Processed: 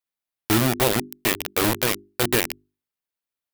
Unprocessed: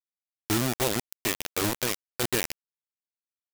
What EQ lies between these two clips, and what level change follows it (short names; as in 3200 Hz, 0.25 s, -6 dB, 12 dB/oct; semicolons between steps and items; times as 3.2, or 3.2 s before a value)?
bell 6600 Hz -5.5 dB 1 oct; notches 50/100/150/200/250/300/350/400 Hz; +7.0 dB